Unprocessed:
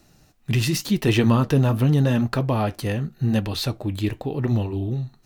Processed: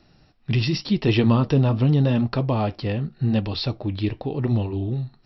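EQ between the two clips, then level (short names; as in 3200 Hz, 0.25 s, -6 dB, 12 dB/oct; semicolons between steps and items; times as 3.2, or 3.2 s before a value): dynamic EQ 1600 Hz, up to -6 dB, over -45 dBFS, Q 2.1; brick-wall FIR low-pass 5700 Hz; 0.0 dB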